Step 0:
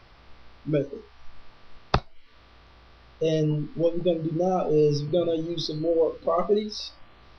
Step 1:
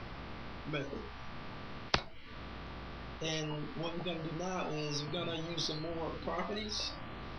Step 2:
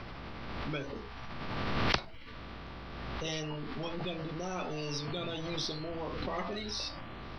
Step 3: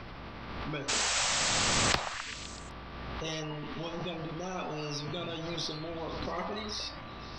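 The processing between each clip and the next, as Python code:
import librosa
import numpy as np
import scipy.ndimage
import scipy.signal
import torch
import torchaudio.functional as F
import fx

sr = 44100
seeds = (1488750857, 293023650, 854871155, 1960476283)

y1 = fx.bass_treble(x, sr, bass_db=12, treble_db=-7)
y1 = fx.spectral_comp(y1, sr, ratio=4.0)
y1 = F.gain(torch.from_numpy(y1), -8.5).numpy()
y2 = fx.pre_swell(y1, sr, db_per_s=24.0)
y3 = fx.cheby_harmonics(y2, sr, harmonics=(4,), levels_db=(-22,), full_scale_db=-10.0)
y3 = fx.spec_paint(y3, sr, seeds[0], shape='noise', start_s=0.88, length_s=1.05, low_hz=490.0, high_hz=8200.0, level_db=-30.0)
y3 = fx.echo_stepped(y3, sr, ms=128, hz=830.0, octaves=0.7, feedback_pct=70, wet_db=-4.5)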